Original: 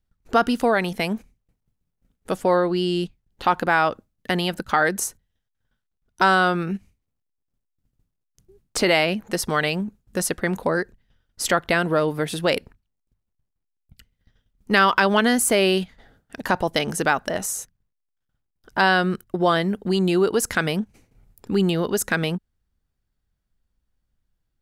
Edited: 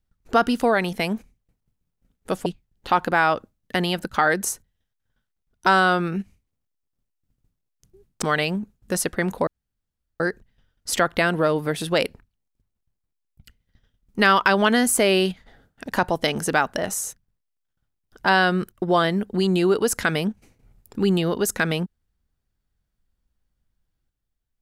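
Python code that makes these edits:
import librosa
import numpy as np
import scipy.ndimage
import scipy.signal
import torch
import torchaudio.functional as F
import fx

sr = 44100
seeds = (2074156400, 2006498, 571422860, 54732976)

y = fx.edit(x, sr, fx.cut(start_s=2.46, length_s=0.55),
    fx.cut(start_s=8.77, length_s=0.7),
    fx.insert_room_tone(at_s=10.72, length_s=0.73), tone=tone)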